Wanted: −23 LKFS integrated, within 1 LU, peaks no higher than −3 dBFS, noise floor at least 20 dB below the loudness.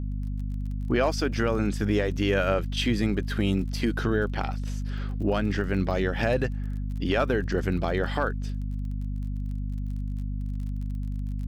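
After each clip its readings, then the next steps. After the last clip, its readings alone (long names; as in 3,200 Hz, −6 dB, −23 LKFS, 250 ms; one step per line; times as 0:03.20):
crackle rate 31 per second; mains hum 50 Hz; hum harmonics up to 250 Hz; level of the hum −28 dBFS; integrated loudness −28.0 LKFS; sample peak −12.5 dBFS; target loudness −23.0 LKFS
→ click removal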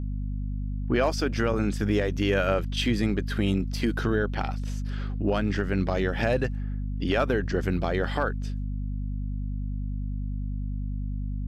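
crackle rate 0 per second; mains hum 50 Hz; hum harmonics up to 250 Hz; level of the hum −28 dBFS
→ mains-hum notches 50/100/150/200/250 Hz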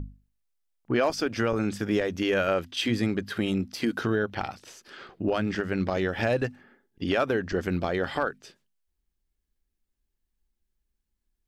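mains hum none found; integrated loudness −28.0 LKFS; sample peak −14.0 dBFS; target loudness −23.0 LKFS
→ level +5 dB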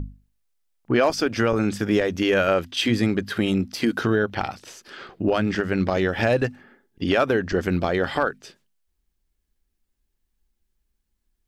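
integrated loudness −23.0 LKFS; sample peak −9.0 dBFS; background noise floor −75 dBFS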